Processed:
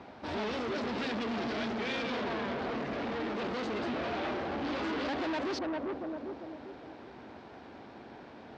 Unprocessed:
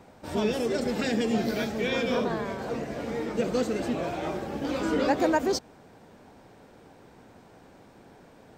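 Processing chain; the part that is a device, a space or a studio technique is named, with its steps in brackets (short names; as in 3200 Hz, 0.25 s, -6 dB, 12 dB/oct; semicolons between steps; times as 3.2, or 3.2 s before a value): analogue delay pedal into a guitar amplifier (analogue delay 0.397 s, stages 2048, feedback 42%, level -9.5 dB; tube stage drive 38 dB, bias 0.5; speaker cabinet 77–4600 Hz, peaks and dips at 110 Hz -8 dB, 170 Hz -9 dB, 500 Hz -5 dB); gain +7 dB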